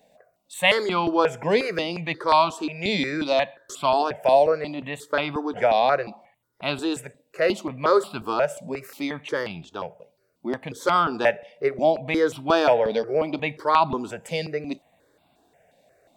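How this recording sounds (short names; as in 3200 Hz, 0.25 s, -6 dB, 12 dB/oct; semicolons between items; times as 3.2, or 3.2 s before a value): notches that jump at a steady rate 5.6 Hz 350–1800 Hz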